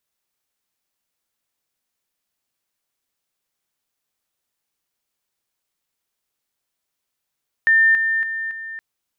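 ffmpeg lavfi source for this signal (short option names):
-f lavfi -i "aevalsrc='pow(10,(-11-6*floor(t/0.28))/20)*sin(2*PI*1800*t)':d=1.12:s=44100"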